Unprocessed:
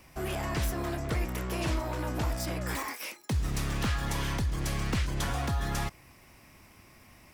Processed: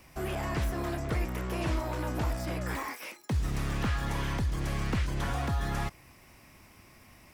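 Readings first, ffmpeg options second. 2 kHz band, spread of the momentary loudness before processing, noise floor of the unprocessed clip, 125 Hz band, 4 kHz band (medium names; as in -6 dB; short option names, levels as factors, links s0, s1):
-1.0 dB, 3 LU, -57 dBFS, 0.0 dB, -3.5 dB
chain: -filter_complex "[0:a]acrossover=split=2600[s0][s1];[s1]acompressor=threshold=0.00631:ratio=4:attack=1:release=60[s2];[s0][s2]amix=inputs=2:normalize=0"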